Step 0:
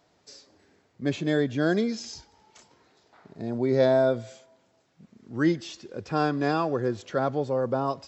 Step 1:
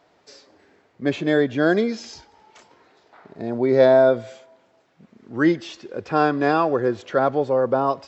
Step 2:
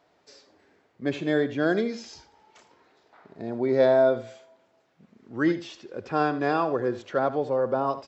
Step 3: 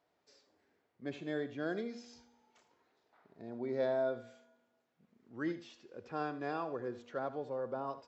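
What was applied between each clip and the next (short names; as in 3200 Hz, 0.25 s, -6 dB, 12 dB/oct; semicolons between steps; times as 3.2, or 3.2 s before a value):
tone controls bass -8 dB, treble -10 dB; gain +7.5 dB
echo 79 ms -14 dB; gain -5.5 dB
resonator 240 Hz, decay 1.2 s, mix 60%; gain -6 dB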